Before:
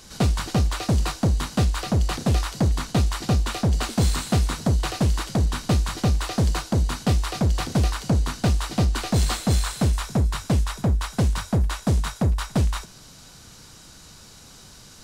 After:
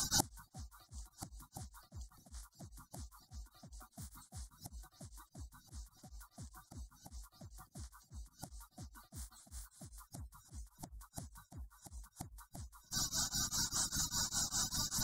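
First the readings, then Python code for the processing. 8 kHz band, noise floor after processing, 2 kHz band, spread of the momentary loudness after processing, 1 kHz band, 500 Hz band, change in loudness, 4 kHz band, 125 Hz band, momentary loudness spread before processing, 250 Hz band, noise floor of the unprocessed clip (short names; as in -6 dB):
-6.0 dB, -73 dBFS, -20.0 dB, 20 LU, -20.5 dB, -30.0 dB, -16.0 dB, -12.0 dB, -29.0 dB, 2 LU, -27.5 dB, -47 dBFS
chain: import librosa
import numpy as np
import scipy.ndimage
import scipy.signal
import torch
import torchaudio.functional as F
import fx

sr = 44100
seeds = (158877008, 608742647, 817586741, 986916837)

y = fx.spec_quant(x, sr, step_db=30)
y = fx.high_shelf(y, sr, hz=5600.0, db=11.0)
y = fx.gate_flip(y, sr, shuts_db=-23.0, range_db=-38)
y = fx.fixed_phaser(y, sr, hz=1100.0, stages=4)
y = y * np.abs(np.cos(np.pi * 5.0 * np.arange(len(y)) / sr))
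y = y * librosa.db_to_amplitude(10.5)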